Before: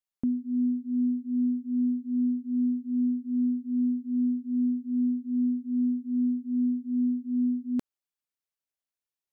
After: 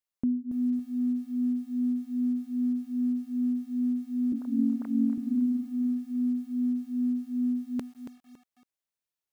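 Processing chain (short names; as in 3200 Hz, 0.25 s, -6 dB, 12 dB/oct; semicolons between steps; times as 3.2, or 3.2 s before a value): 4.32–5.18 sine-wave speech; lo-fi delay 0.279 s, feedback 35%, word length 9-bit, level -9.5 dB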